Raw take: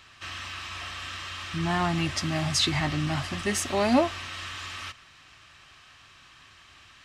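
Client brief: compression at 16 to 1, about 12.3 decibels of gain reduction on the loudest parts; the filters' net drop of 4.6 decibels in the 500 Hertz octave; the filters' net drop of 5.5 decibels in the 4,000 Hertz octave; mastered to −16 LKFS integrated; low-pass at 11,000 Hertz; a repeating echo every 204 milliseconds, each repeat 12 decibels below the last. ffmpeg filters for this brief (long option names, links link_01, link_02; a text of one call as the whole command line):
ffmpeg -i in.wav -af "lowpass=11000,equalizer=frequency=500:width_type=o:gain=-6.5,equalizer=frequency=4000:width_type=o:gain=-7,acompressor=threshold=-30dB:ratio=16,aecho=1:1:204|408|612:0.251|0.0628|0.0157,volume=19.5dB" out.wav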